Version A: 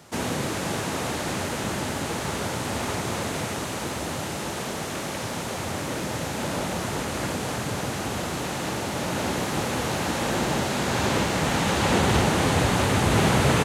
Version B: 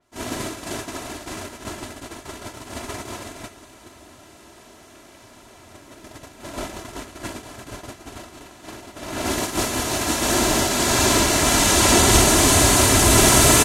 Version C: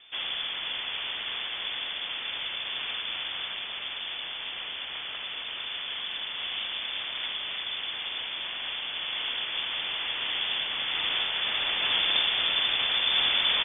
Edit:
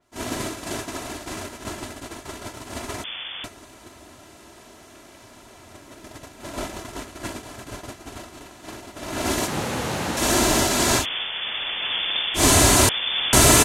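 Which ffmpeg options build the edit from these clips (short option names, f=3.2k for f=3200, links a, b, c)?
-filter_complex "[2:a]asplit=3[a][b][c];[1:a]asplit=5[d][e][f][g][h];[d]atrim=end=3.042[i];[a]atrim=start=3.038:end=3.442[j];[e]atrim=start=3.438:end=9.482[k];[0:a]atrim=start=9.478:end=10.172[l];[f]atrim=start=10.168:end=11.06[m];[b]atrim=start=10.96:end=12.44[n];[g]atrim=start=12.34:end=12.892[o];[c]atrim=start=12.888:end=13.332[p];[h]atrim=start=13.328[q];[i][j]acrossfade=d=0.004:c1=hsin:c2=hsin[r];[r][k]acrossfade=d=0.004:c1=hsin:c2=hsin[s];[s][l]acrossfade=d=0.004:c1=hsin:c2=hsin[t];[t][m]acrossfade=d=0.004:c1=hsin:c2=hsin[u];[u][n]acrossfade=d=0.1:c1=tri:c2=tri[v];[v][o]acrossfade=d=0.1:c1=tri:c2=tri[w];[w][p]acrossfade=d=0.004:c1=hsin:c2=hsin[x];[x][q]acrossfade=d=0.004:c1=hsin:c2=hsin"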